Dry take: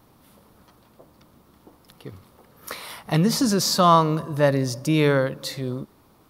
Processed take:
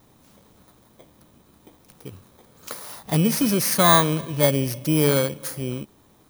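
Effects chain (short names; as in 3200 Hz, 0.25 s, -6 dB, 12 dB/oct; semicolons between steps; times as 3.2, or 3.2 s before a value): FFT order left unsorted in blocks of 16 samples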